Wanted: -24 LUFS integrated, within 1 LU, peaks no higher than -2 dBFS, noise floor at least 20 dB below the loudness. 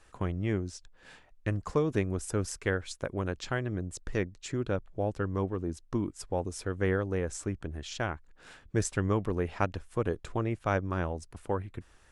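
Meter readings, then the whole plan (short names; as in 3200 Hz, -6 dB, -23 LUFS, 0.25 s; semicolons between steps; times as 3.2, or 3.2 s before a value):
loudness -33.0 LUFS; peak -12.5 dBFS; loudness target -24.0 LUFS
-> gain +9 dB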